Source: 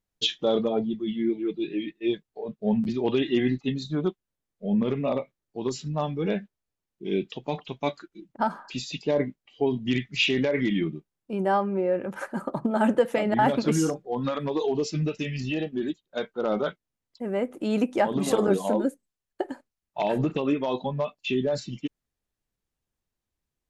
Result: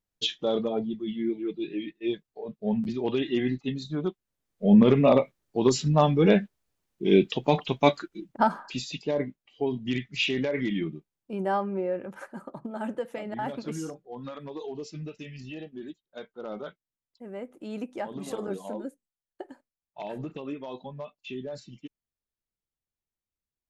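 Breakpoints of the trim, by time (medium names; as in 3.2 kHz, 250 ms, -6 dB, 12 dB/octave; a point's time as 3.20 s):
4.08 s -3 dB
4.69 s +7.5 dB
7.99 s +7.5 dB
9.12 s -3.5 dB
11.79 s -3.5 dB
12.53 s -11 dB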